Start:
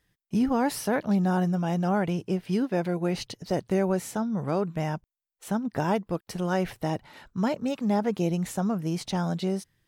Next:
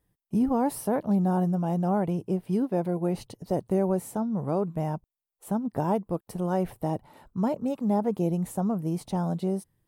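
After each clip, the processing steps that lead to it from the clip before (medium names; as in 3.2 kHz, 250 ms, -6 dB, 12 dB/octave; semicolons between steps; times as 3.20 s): high-order bell 3.1 kHz -11.5 dB 2.6 oct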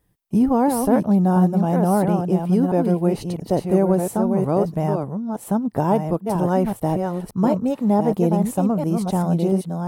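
chunks repeated in reverse 680 ms, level -5 dB; trim +7 dB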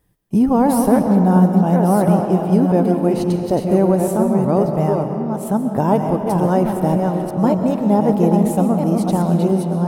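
reverberation RT60 3.0 s, pre-delay 90 ms, DRR 5.5 dB; trim +2.5 dB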